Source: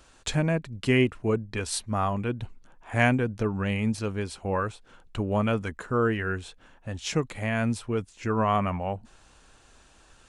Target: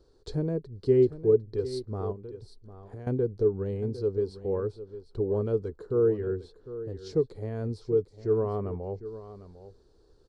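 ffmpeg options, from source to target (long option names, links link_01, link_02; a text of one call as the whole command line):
ffmpeg -i in.wav -filter_complex "[0:a]firequalizer=gain_entry='entry(140,0);entry(220,-7);entry(420,12);entry(600,-8);entry(2600,-27);entry(4400,-3);entry(6600,-19)':delay=0.05:min_phase=1,asettb=1/sr,asplit=3[link_01][link_02][link_03];[link_01]atrim=end=2.124[link_04];[link_02]atrim=start=2.12:end=3.07,asetpts=PTS-STARTPTS,afade=type=in:duration=0.004:curve=qsin,afade=type=out:start_time=0.946:duration=0.004:curve=qsin,acompressor=threshold=-36dB:ratio=10[link_05];[link_03]atrim=start=3.066[link_06];[link_04][link_05]acrossfade=duration=0.004:curve1=hsin:curve2=qsin[link_07];[link_07][link_06]acrossfade=duration=0.004:curve1=qsin:curve2=hsin,aecho=1:1:753:0.2,volume=-3.5dB" out.wav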